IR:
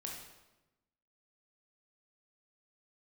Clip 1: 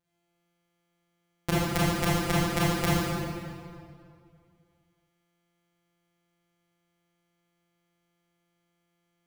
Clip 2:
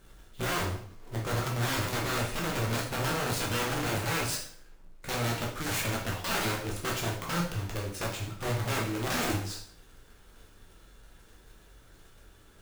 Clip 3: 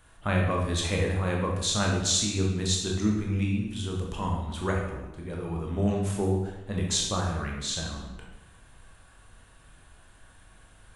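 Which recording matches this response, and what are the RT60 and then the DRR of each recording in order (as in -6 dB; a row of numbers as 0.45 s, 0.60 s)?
3; 2.3 s, 0.50 s, 1.0 s; -9.0 dB, -2.5 dB, -1.5 dB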